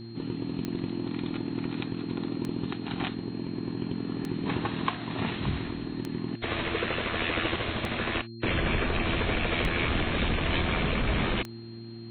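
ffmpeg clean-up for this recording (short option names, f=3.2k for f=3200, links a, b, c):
-af "adeclick=t=4,bandreject=f=114.8:t=h:w=4,bandreject=f=229.6:t=h:w=4,bandreject=f=344.4:t=h:w=4,bandreject=f=4.2k:w=30"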